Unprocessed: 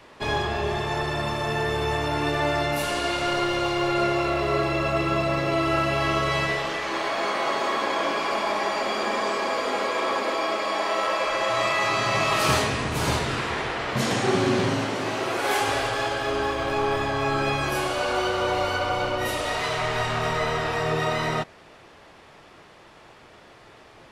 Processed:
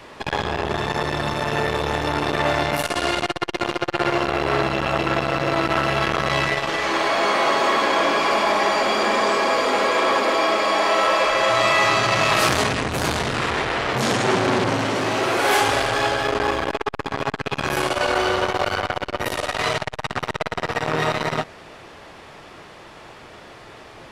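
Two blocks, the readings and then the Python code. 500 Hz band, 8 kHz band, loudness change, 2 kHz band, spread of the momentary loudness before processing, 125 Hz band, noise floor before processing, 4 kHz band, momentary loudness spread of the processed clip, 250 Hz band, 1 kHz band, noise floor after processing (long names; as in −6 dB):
+3.5 dB, +4.0 dB, +4.0 dB, +4.5 dB, 4 LU, +1.0 dB, −50 dBFS, +4.5 dB, 8 LU, +2.5 dB, +4.5 dB, −43 dBFS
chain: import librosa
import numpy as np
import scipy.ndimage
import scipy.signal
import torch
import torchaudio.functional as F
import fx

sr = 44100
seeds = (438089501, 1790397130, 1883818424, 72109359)

y = fx.transformer_sat(x, sr, knee_hz=2000.0)
y = y * 10.0 ** (7.5 / 20.0)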